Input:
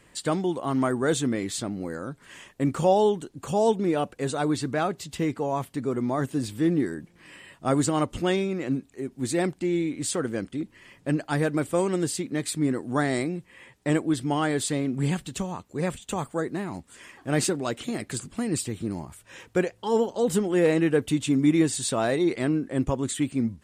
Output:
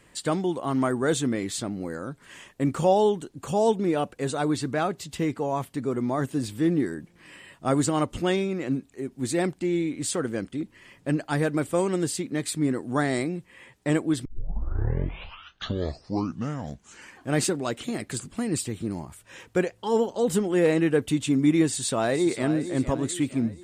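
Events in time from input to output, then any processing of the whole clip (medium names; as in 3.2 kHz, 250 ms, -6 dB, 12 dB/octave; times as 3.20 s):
14.25 s: tape start 3.07 s
21.68–22.59 s: echo throw 460 ms, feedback 45%, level -11 dB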